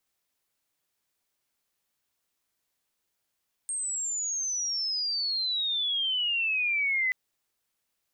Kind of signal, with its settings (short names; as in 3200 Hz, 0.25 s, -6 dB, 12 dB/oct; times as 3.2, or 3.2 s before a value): chirp logarithmic 8600 Hz -> 2000 Hz -29 dBFS -> -23.5 dBFS 3.43 s